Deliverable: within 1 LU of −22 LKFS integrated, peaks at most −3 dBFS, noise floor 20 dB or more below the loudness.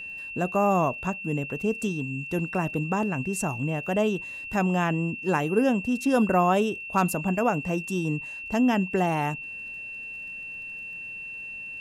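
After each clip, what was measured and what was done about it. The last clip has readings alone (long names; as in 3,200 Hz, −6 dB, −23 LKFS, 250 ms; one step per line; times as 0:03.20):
crackle rate 33 per second; interfering tone 2,700 Hz; level of the tone −35 dBFS; integrated loudness −27.0 LKFS; sample peak −11.0 dBFS; target loudness −22.0 LKFS
→ click removal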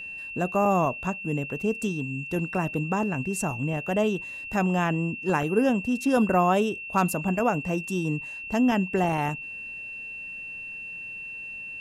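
crackle rate 0 per second; interfering tone 2,700 Hz; level of the tone −35 dBFS
→ notch filter 2,700 Hz, Q 30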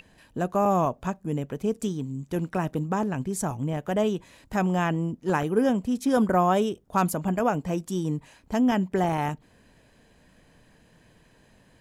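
interfering tone none found; integrated loudness −26.5 LKFS; sample peak −11.0 dBFS; target loudness −22.0 LKFS
→ level +4.5 dB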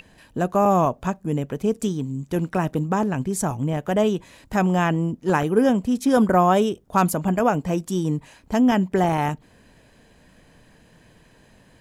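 integrated loudness −22.0 LKFS; sample peak −6.5 dBFS; background noise floor −55 dBFS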